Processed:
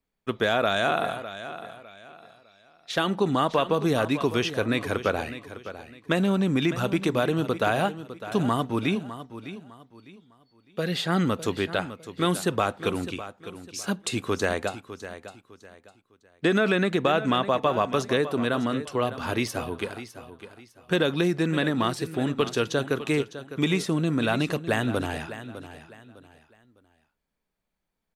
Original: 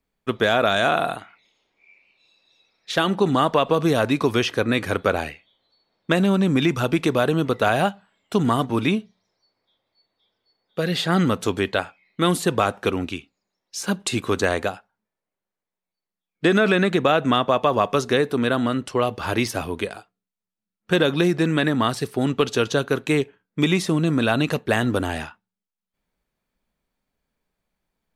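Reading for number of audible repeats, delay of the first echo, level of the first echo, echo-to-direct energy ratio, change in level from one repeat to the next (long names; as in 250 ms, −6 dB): 3, 605 ms, −13.0 dB, −12.5 dB, −10.5 dB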